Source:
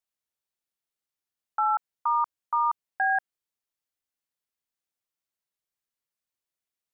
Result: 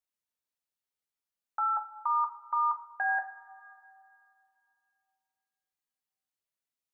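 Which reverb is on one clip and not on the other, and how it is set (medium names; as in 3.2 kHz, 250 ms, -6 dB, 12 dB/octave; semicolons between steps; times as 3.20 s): two-slope reverb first 0.33 s, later 2.7 s, from -18 dB, DRR 4 dB; trim -5 dB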